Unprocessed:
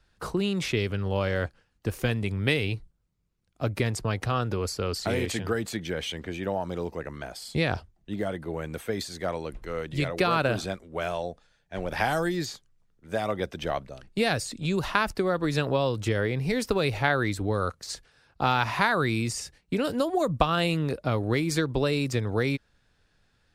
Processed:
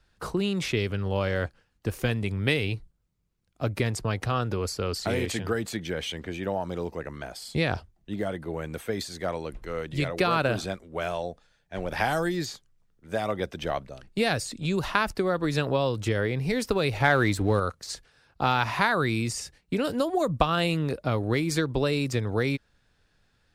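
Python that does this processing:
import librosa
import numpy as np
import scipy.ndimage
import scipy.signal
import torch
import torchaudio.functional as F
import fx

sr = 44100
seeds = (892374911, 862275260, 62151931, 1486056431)

y = fx.leveller(x, sr, passes=1, at=(17.0, 17.6))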